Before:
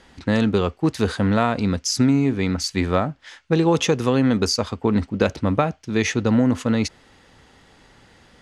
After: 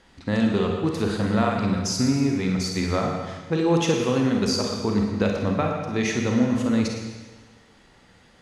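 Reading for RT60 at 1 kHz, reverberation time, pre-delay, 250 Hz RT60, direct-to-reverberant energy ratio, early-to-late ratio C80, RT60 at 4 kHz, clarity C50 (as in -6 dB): 1.4 s, 1.4 s, 33 ms, 1.4 s, 0.5 dB, 4.0 dB, 1.4 s, 2.0 dB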